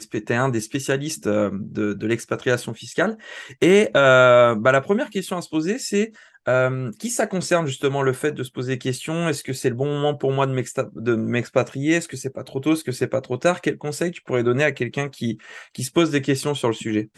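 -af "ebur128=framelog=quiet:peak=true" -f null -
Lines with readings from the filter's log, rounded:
Integrated loudness:
  I:         -21.5 LUFS
  Threshold: -31.6 LUFS
Loudness range:
  LRA:         5.9 LU
  Threshold: -41.4 LUFS
  LRA low:   -23.7 LUFS
  LRA high:  -17.7 LUFS
True peak:
  Peak:       -3.1 dBFS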